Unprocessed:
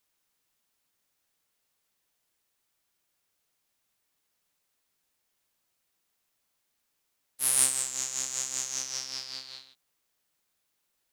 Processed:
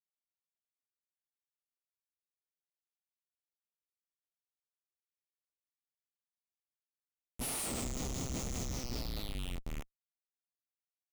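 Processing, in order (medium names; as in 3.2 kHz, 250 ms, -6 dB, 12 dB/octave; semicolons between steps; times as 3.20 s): tape stop on the ending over 2.37 s; Schmitt trigger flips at -32 dBFS; graphic EQ with 31 bands 250 Hz +4 dB, 1 kHz -3 dB, 1.6 kHz -9 dB; trim +1 dB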